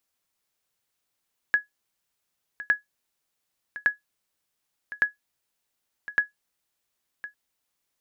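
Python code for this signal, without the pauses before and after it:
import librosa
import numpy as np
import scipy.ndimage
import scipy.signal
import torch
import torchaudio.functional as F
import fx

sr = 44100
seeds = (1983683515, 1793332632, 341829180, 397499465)

y = fx.sonar_ping(sr, hz=1680.0, decay_s=0.14, every_s=1.16, pings=5, echo_s=1.06, echo_db=-16.0, level_db=-11.5)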